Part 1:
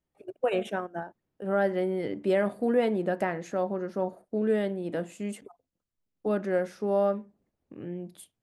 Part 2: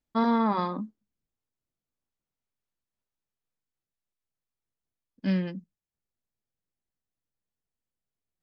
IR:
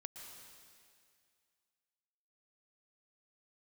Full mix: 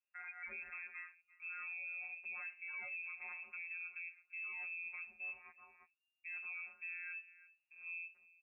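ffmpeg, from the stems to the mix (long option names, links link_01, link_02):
-filter_complex "[0:a]aecho=1:1:5:0.5,volume=-11.5dB,asplit=3[link_01][link_02][link_03];[link_02]volume=-21.5dB[link_04];[1:a]highpass=1200,highshelf=frequency=2200:gain=-11.5,alimiter=level_in=9dB:limit=-24dB:level=0:latency=1:release=99,volume=-9dB,volume=-2.5dB,asplit=2[link_05][link_06];[link_06]volume=-9.5dB[link_07];[link_03]apad=whole_len=371545[link_08];[link_05][link_08]sidechaincompress=threshold=-54dB:ratio=5:attack=7.1:release=132[link_09];[link_04][link_07]amix=inputs=2:normalize=0,aecho=0:1:341:1[link_10];[link_01][link_09][link_10]amix=inputs=3:normalize=0,afftfilt=real='hypot(re,im)*cos(PI*b)':imag='0':win_size=1024:overlap=0.75,lowpass=frequency=2400:width_type=q:width=0.5098,lowpass=frequency=2400:width_type=q:width=0.6013,lowpass=frequency=2400:width_type=q:width=0.9,lowpass=frequency=2400:width_type=q:width=2.563,afreqshift=-2800,alimiter=level_in=14.5dB:limit=-24dB:level=0:latency=1:release=52,volume=-14.5dB"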